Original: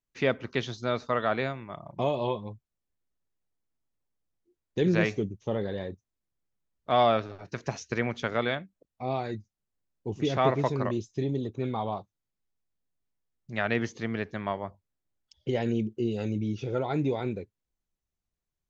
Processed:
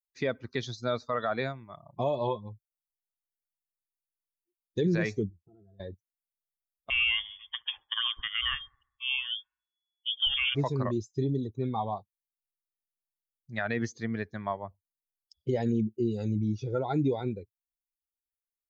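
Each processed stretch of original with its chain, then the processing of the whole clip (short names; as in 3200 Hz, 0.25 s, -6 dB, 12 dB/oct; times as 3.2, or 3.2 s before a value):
5.3–5.8 octave resonator E, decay 0.12 s + compressor 2.5:1, threshold -47 dBFS
6.9–10.55 thin delay 69 ms, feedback 65%, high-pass 2600 Hz, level -12 dB + inverted band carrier 3400 Hz
whole clip: per-bin expansion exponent 1.5; limiter -22 dBFS; gain +3.5 dB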